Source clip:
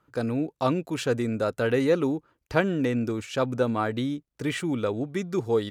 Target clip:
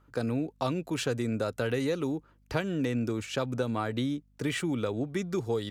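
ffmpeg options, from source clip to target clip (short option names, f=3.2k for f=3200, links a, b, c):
-filter_complex "[0:a]acrossover=split=120|3000[a][b][c];[b]acompressor=threshold=-27dB:ratio=6[d];[a][d][c]amix=inputs=3:normalize=0,aeval=exprs='val(0)+0.000708*(sin(2*PI*50*n/s)+sin(2*PI*2*50*n/s)/2+sin(2*PI*3*50*n/s)/3+sin(2*PI*4*50*n/s)/4+sin(2*PI*5*50*n/s)/5)':c=same"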